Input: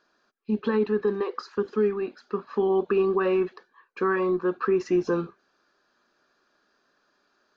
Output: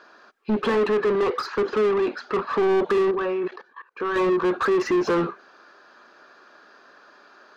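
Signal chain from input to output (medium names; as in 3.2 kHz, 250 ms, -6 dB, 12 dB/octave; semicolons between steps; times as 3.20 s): 3.11–4.16 s: level held to a coarse grid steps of 19 dB; overdrive pedal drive 28 dB, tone 1.5 kHz, clips at -14 dBFS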